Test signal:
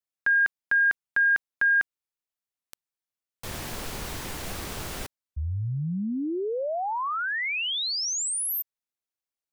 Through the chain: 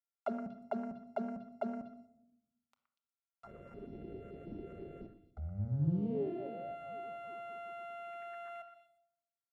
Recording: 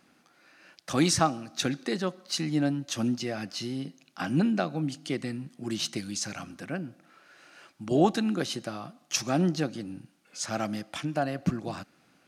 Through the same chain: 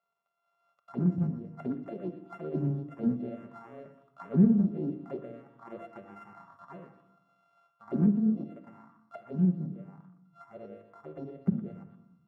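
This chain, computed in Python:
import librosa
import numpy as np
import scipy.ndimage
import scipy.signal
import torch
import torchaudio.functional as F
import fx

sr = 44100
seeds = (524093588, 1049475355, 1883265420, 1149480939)

p1 = np.r_[np.sort(x[:len(x) // 64 * 64].reshape(-1, 64), axis=1).ravel(), x[len(x) // 64 * 64:]]
p2 = fx.low_shelf(p1, sr, hz=170.0, db=11.5)
p3 = fx.env_phaser(p2, sr, low_hz=280.0, high_hz=3300.0, full_db=-18.5)
p4 = fx.auto_wah(p3, sr, base_hz=200.0, top_hz=1500.0, q=4.4, full_db=-20.5, direction='down')
p5 = fx.high_shelf(p4, sr, hz=4500.0, db=-7.0)
p6 = p5 + fx.echo_stepped(p5, sr, ms=120, hz=1500.0, octaves=1.4, feedback_pct=70, wet_db=-6.5, dry=0)
p7 = fx.room_shoebox(p6, sr, seeds[0], volume_m3=2100.0, walls='furnished', distance_m=1.2)
p8 = fx.rider(p7, sr, range_db=3, speed_s=2.0)
y = fx.doppler_dist(p8, sr, depth_ms=0.32)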